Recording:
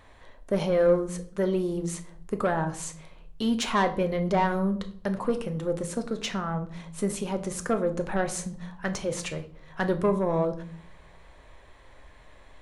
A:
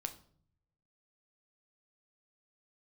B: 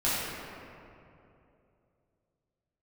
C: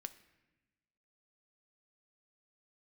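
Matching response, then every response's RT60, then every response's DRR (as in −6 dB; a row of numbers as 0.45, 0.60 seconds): A; 0.55, 2.8, 1.1 seconds; 6.5, −10.5, 9.5 decibels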